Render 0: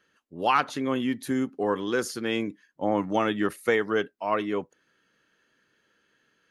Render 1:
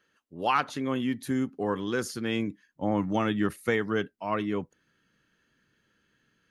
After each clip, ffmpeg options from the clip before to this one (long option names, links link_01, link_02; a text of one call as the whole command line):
ffmpeg -i in.wav -af "asubboost=boost=3.5:cutoff=240,volume=-2.5dB" out.wav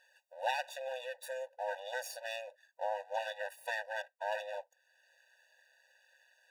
ffmpeg -i in.wav -af "acompressor=threshold=-56dB:ratio=1.5,aeval=exprs='max(val(0),0)':channel_layout=same,afftfilt=real='re*eq(mod(floor(b*sr/1024/490),2),1)':imag='im*eq(mod(floor(b*sr/1024/490),2),1)':win_size=1024:overlap=0.75,volume=11dB" out.wav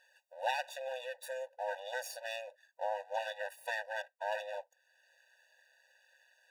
ffmpeg -i in.wav -af anull out.wav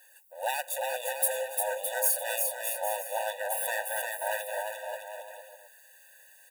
ffmpeg -i in.wav -filter_complex "[0:a]asplit=2[link_01][link_02];[link_02]alimiter=level_in=6dB:limit=-24dB:level=0:latency=1:release=356,volume=-6dB,volume=-1.5dB[link_03];[link_01][link_03]amix=inputs=2:normalize=0,aexciter=amount=12.6:drive=2.3:freq=7800,aecho=1:1:350|612.5|809.4|957|1068:0.631|0.398|0.251|0.158|0.1" out.wav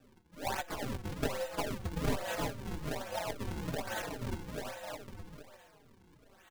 ffmpeg -i in.wav -filter_complex "[0:a]aeval=exprs='if(lt(val(0),0),0.447*val(0),val(0))':channel_layout=same,acrusher=samples=41:mix=1:aa=0.000001:lfo=1:lforange=65.6:lforate=1.2,asplit=2[link_01][link_02];[link_02]adelay=4.5,afreqshift=-2.4[link_03];[link_01][link_03]amix=inputs=2:normalize=1" out.wav